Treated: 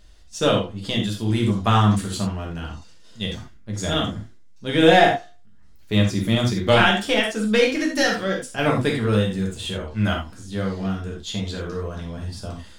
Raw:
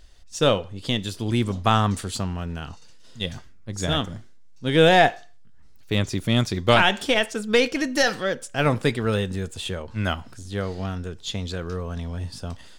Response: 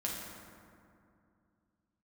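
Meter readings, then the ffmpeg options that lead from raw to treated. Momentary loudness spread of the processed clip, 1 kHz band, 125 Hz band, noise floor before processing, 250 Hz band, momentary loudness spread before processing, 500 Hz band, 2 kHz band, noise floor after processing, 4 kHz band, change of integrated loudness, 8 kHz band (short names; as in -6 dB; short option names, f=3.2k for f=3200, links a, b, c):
16 LU, +1.0 dB, +2.5 dB, -44 dBFS, +4.0 dB, 15 LU, +1.5 dB, +1.0 dB, -44 dBFS, +1.0 dB, +2.0 dB, +0.5 dB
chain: -filter_complex "[1:a]atrim=start_sample=2205,atrim=end_sample=4410[a];[0:a][a]afir=irnorm=-1:irlink=0"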